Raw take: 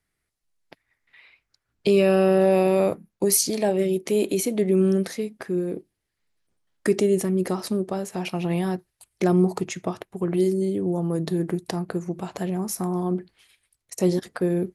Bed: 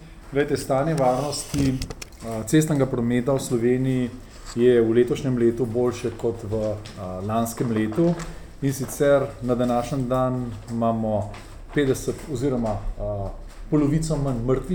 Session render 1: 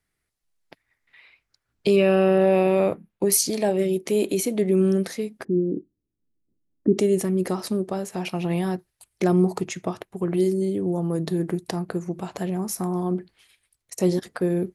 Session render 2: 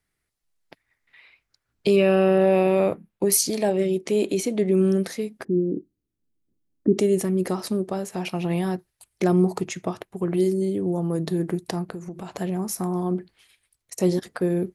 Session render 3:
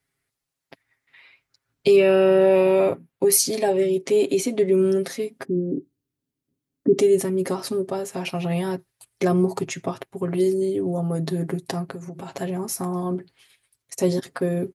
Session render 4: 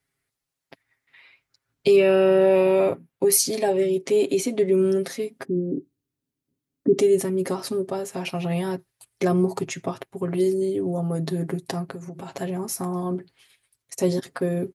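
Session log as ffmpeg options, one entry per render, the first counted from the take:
ffmpeg -i in.wav -filter_complex "[0:a]asettb=1/sr,asplit=3[link_01][link_02][link_03];[link_01]atrim=end=1.964[link_04];[link_02]atrim=start=1.96:end=3.32,asetpts=PTS-STARTPTS,afade=type=in:duration=0.004:curve=qsin,afade=type=out:start_time=1.356:duration=0.004:curve=qsin,highshelf=frequency=4000:width_type=q:width=1.5:gain=-7[link_05];[link_03]atrim=start=3.316[link_06];[link_04][link_05]acrossfade=duration=0.004:curve1=hsin:curve2=qsin[link_07];[link_07][link_06]acrossfade=duration=0.004:curve1=qsin:curve2=hsin,asplit=3[link_08][link_09][link_10];[link_08]afade=type=out:start_time=5.43:duration=0.02[link_11];[link_09]lowpass=frequency=290:width_type=q:width=2.5,afade=type=in:start_time=5.43:duration=0.02,afade=type=out:start_time=6.97:duration=0.02[link_12];[link_10]afade=type=in:start_time=6.97:duration=0.02[link_13];[link_11][link_12][link_13]amix=inputs=3:normalize=0" out.wav
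ffmpeg -i in.wav -filter_complex "[0:a]asettb=1/sr,asplit=3[link_01][link_02][link_03];[link_01]atrim=end=3.704[link_04];[link_02]atrim=start=3.7:end=4.74,asetpts=PTS-STARTPTS,afade=type=in:duration=0.004:curve=qsin,afade=type=out:start_time=1.036:duration=0.004:curve=qsin,lowpass=8200[link_05];[link_03]atrim=start=4.736[link_06];[link_04][link_05]acrossfade=duration=0.004:curve1=hsin:curve2=qsin[link_07];[link_07][link_06]acrossfade=duration=0.004:curve1=qsin:curve2=hsin,asettb=1/sr,asplit=3[link_08][link_09][link_10];[link_08]atrim=end=11.874[link_11];[link_09]atrim=start=11.87:end=12.31,asetpts=PTS-STARTPTS,afade=type=in:duration=0.004:curve=qsin,afade=type=out:start_time=0.436:duration=0.004:curve=qsin,acompressor=threshold=-30dB:ratio=6:attack=3.2:release=140:knee=1:detection=peak[link_12];[link_10]atrim=start=12.306[link_13];[link_11][link_12]acrossfade=duration=0.004:curve1=hsin:curve2=qsin[link_14];[link_14][link_13]acrossfade=duration=0.004:curve1=qsin:curve2=hsin" out.wav
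ffmpeg -i in.wav -af "highpass=54,aecho=1:1:7.4:0.71" out.wav
ffmpeg -i in.wav -af "volume=-1dB" out.wav

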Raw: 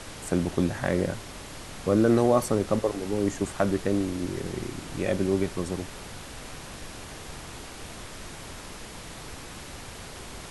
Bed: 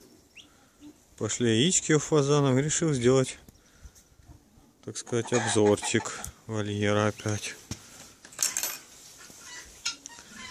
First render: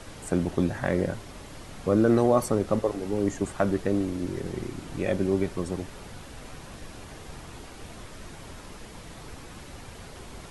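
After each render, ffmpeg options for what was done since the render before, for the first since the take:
ffmpeg -i in.wav -af "afftdn=noise_reduction=6:noise_floor=-42" out.wav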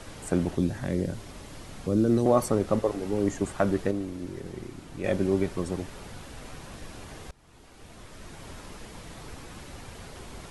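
ffmpeg -i in.wav -filter_complex "[0:a]asettb=1/sr,asplit=3[link_01][link_02][link_03];[link_01]atrim=end=0.554[link_04];[link_02]atrim=start=0.55:end=2.26,asetpts=PTS-STARTPTS,afade=type=in:duration=0.004:curve=qsin,afade=type=out:start_time=1.706:duration=0.004:curve=qsin,acrossover=split=410|3000[link_05][link_06][link_07];[link_06]acompressor=threshold=-48dB:ratio=2:attack=3.2:release=140:knee=2.83:detection=peak[link_08];[link_05][link_08][link_07]amix=inputs=3:normalize=0[link_09];[link_03]atrim=start=2.256[link_10];[link_04][link_09]acrossfade=duration=0.004:curve1=hsin:curve2=qsin[link_11];[link_11][link_10]acrossfade=duration=0.004:curve1=qsin:curve2=hsin,asplit=4[link_12][link_13][link_14][link_15];[link_12]atrim=end=3.912[link_16];[link_13]atrim=start=3.908:end=5.042,asetpts=PTS-STARTPTS,volume=-5.5dB[link_17];[link_14]atrim=start=5.038:end=7.31,asetpts=PTS-STARTPTS,afade=type=out:start_time=2.268:duration=0.004:curve=hsin:silence=0.0707946[link_18];[link_15]atrim=start=7.31,asetpts=PTS-STARTPTS,afade=type=in:duration=1.21:silence=0.0707946[link_19];[link_16][link_17]acrossfade=duration=0.004:curve1=hsin:curve2=hsin[link_20];[link_18][link_19]concat=n=2:v=0:a=1[link_21];[link_20][link_21]acrossfade=duration=0.004:curve1=hsin:curve2=hsin" out.wav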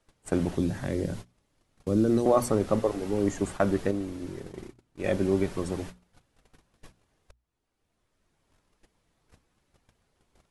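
ffmpeg -i in.wav -af "agate=range=-29dB:threshold=-37dB:ratio=16:detection=peak,bandreject=frequency=60:width_type=h:width=6,bandreject=frequency=120:width_type=h:width=6,bandreject=frequency=180:width_type=h:width=6,bandreject=frequency=240:width_type=h:width=6" out.wav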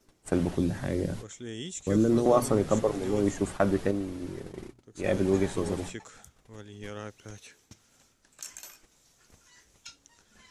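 ffmpeg -i in.wav -i bed.wav -filter_complex "[1:a]volume=-15dB[link_01];[0:a][link_01]amix=inputs=2:normalize=0" out.wav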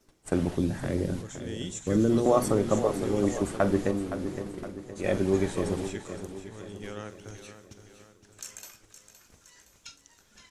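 ffmpeg -i in.wav -filter_complex "[0:a]asplit=2[link_01][link_02];[link_02]adelay=44,volume=-14dB[link_03];[link_01][link_03]amix=inputs=2:normalize=0,aecho=1:1:516|1032|1548|2064|2580:0.282|0.141|0.0705|0.0352|0.0176" out.wav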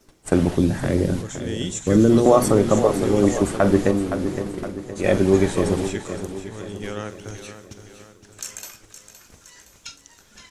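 ffmpeg -i in.wav -af "volume=8.5dB,alimiter=limit=-3dB:level=0:latency=1" out.wav

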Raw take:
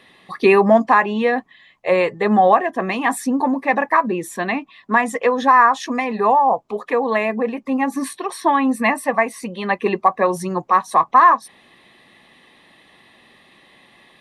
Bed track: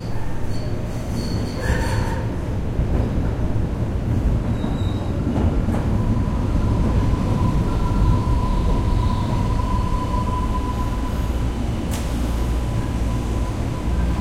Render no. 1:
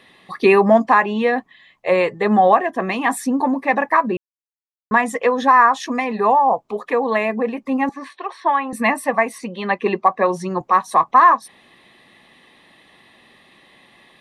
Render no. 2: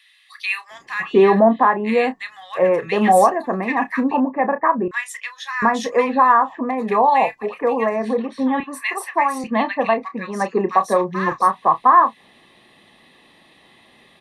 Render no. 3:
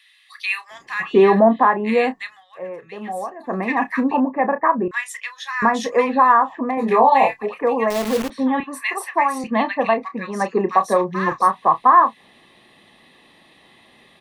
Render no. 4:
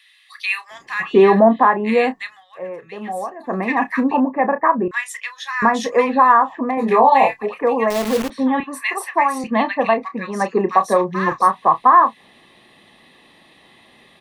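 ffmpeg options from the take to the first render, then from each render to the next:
ffmpeg -i in.wav -filter_complex "[0:a]asettb=1/sr,asplit=3[link_01][link_02][link_03];[link_01]atrim=end=7.894[link_04];[link_02]atrim=start=7.89:end=8.73,asetpts=PTS-STARTPTS,afade=type=in:duration=0.004:curve=qsin,afade=type=out:start_time=0.836:duration=0.004:curve=qsin,highpass=540,lowpass=2800[link_05];[link_03]atrim=start=8.726[link_06];[link_04][link_05]acrossfade=duration=0.004:curve1=hsin:curve2=qsin[link_07];[link_07][link_06]acrossfade=duration=0.004:curve1=qsin:curve2=hsin,asettb=1/sr,asplit=3[link_08][link_09][link_10];[link_08]atrim=end=9.384[link_11];[link_09]atrim=start=9.38:end=10.61,asetpts=PTS-STARTPTS,afade=type=in:duration=0.004:curve=qsin,afade=type=out:start_time=1.226:duration=0.004:curve=qsin,highpass=120,lowpass=6600[link_12];[link_10]atrim=start=10.606[link_13];[link_11][link_12]acrossfade=duration=0.004:curve1=hsin:curve2=qsin[link_14];[link_14][link_13]acrossfade=duration=0.004:curve1=qsin:curve2=hsin,asplit=3[link_15][link_16][link_17];[link_15]atrim=end=4.17,asetpts=PTS-STARTPTS,afade=type=out:start_time=4.166:duration=0.004:curve=hsin[link_18];[link_16]atrim=start=4.17:end=4.91,asetpts=PTS-STARTPTS,volume=0[link_19];[link_17]atrim=start=4.91,asetpts=PTS-STARTPTS,afade=type=in:duration=0.004:curve=hsin[link_20];[link_18][link_19][link_20]concat=n=3:v=0:a=1" out.wav
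ffmpeg -i in.wav -filter_complex "[0:a]asplit=2[link_01][link_02];[link_02]adelay=31,volume=-11.5dB[link_03];[link_01][link_03]amix=inputs=2:normalize=0,acrossover=split=1700[link_04][link_05];[link_04]adelay=710[link_06];[link_06][link_05]amix=inputs=2:normalize=0" out.wav
ffmpeg -i in.wav -filter_complex "[0:a]asettb=1/sr,asplit=3[link_01][link_02][link_03];[link_01]atrim=end=6.754[link_04];[link_02]atrim=start=6.75:end=7.4,asetpts=PTS-STARTPTS,afade=type=in:duration=0.004:curve=qsin,afade=type=out:start_time=0.646:duration=0.004:curve=qsin,asplit=2[link_05][link_06];[link_06]adelay=22,volume=-2.5dB[link_07];[link_05][link_07]amix=inputs=2:normalize=0,atrim=end_sample=28665[link_08];[link_03]atrim=start=7.396[link_09];[link_04][link_08]acrossfade=duration=0.004:curve1=hsin:curve2=qsin[link_10];[link_10][link_09]acrossfade=duration=0.004:curve1=qsin:curve2=hsin,asettb=1/sr,asplit=3[link_11][link_12][link_13];[link_11]atrim=end=7.904[link_14];[link_12]atrim=start=7.9:end=8.3,asetpts=PTS-STARTPTS,afade=type=in:duration=0.004:curve=qsin,afade=type=out:start_time=0.396:duration=0.004:curve=qsin,acrusher=bits=5:dc=4:mix=0:aa=0.000001[link_15];[link_13]atrim=start=8.296[link_16];[link_14][link_15]acrossfade=duration=0.004:curve1=hsin:curve2=qsin[link_17];[link_17][link_16]acrossfade=duration=0.004:curve1=qsin:curve2=hsin,asplit=3[link_18][link_19][link_20];[link_18]atrim=end=2.44,asetpts=PTS-STARTPTS,afade=type=out:start_time=2.24:duration=0.2:silence=0.177828[link_21];[link_19]atrim=start=2.44:end=3.38,asetpts=PTS-STARTPTS,volume=-15dB[link_22];[link_20]atrim=start=3.38,asetpts=PTS-STARTPTS,afade=type=in:duration=0.2:silence=0.177828[link_23];[link_21][link_22][link_23]concat=n=3:v=0:a=1" out.wav
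ffmpeg -i in.wav -af "volume=1.5dB,alimiter=limit=-2dB:level=0:latency=1" out.wav

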